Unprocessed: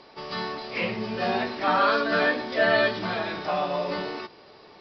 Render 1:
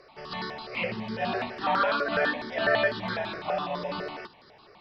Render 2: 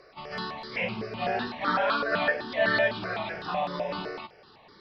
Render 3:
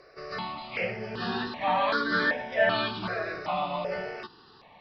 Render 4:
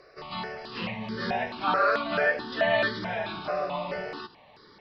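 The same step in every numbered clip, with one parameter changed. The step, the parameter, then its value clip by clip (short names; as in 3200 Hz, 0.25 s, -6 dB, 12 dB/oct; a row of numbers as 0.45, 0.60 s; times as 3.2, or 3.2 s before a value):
step phaser, rate: 12, 7.9, 2.6, 4.6 Hz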